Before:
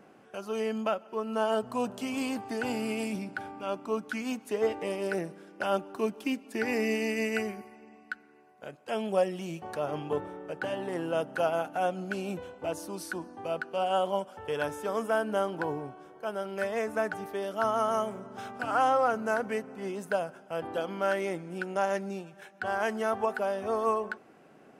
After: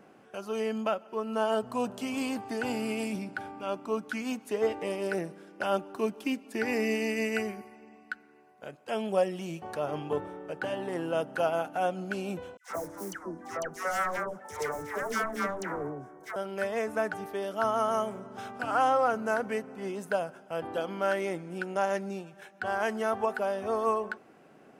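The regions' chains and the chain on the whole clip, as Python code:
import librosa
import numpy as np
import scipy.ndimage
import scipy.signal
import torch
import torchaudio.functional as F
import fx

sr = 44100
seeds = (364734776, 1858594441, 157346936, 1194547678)

y = fx.chain(x, sr, fx.self_delay(depth_ms=0.85),
    fx.band_shelf(hz=3400.0, db=-14.0, octaves=1.1),
    fx.dispersion(late='lows', ms=139.0, hz=990.0), at=(12.57, 16.36))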